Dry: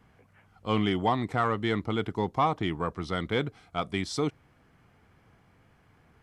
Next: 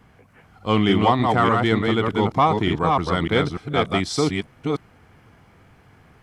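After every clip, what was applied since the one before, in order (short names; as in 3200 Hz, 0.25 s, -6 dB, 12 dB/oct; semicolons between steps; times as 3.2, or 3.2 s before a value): reverse delay 0.298 s, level -3 dB; gain +7.5 dB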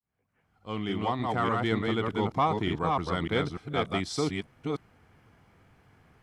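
opening faded in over 1.72 s; gain -8 dB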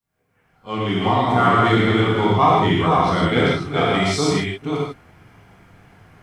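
pre-echo 32 ms -15.5 dB; non-linear reverb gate 0.18 s flat, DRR -5 dB; gain +5.5 dB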